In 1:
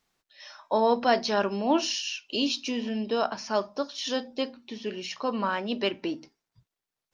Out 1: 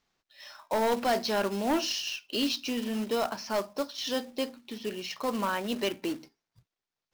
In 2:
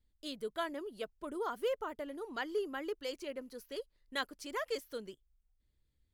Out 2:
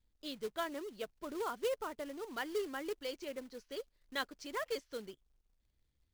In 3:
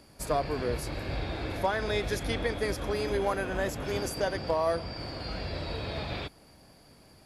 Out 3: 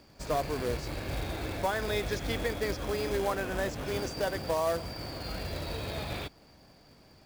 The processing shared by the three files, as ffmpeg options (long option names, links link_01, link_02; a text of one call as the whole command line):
ffmpeg -i in.wav -af "lowpass=frequency=6700:width=0.5412,lowpass=frequency=6700:width=1.3066,aeval=exprs='0.316*(cos(1*acos(clip(val(0)/0.316,-1,1)))-cos(1*PI/2))+0.0501*(cos(5*acos(clip(val(0)/0.316,-1,1)))-cos(5*PI/2))+0.00708*(cos(7*acos(clip(val(0)/0.316,-1,1)))-cos(7*PI/2))':channel_layout=same,acrusher=bits=3:mode=log:mix=0:aa=0.000001,volume=-5.5dB" out.wav